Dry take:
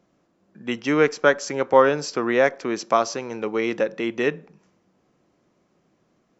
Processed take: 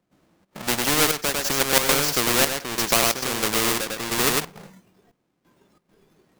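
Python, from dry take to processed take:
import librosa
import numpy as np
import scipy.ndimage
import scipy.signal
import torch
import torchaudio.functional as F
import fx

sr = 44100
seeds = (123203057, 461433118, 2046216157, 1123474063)

y = fx.halfwave_hold(x, sr)
y = y + 10.0 ** (-4.0 / 20.0) * np.pad(y, (int(101 * sr / 1000.0), 0))[:len(y)]
y = fx.step_gate(y, sr, bpm=135, pattern='.xxx.xxxxx..', floor_db=-12.0, edge_ms=4.5)
y = fx.noise_reduce_blind(y, sr, reduce_db=12)
y = fx.spectral_comp(y, sr, ratio=2.0)
y = y * 10.0 ** (2.0 / 20.0)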